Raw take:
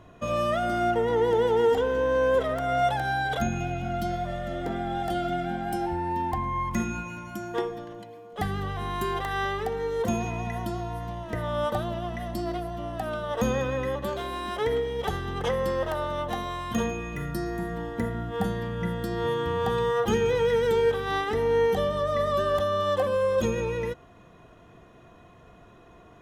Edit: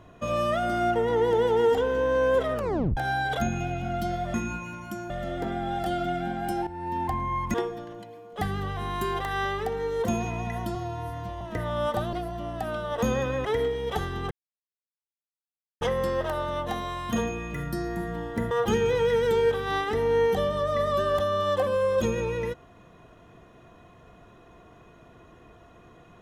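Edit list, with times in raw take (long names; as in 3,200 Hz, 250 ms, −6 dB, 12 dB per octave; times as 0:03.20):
0:02.53: tape stop 0.44 s
0:05.91–0:06.26: fade in, from −13 dB
0:06.78–0:07.54: move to 0:04.34
0:10.75–0:11.19: time-stretch 1.5×
0:11.91–0:12.52: remove
0:13.84–0:14.57: remove
0:15.43: splice in silence 1.50 s
0:18.13–0:19.91: remove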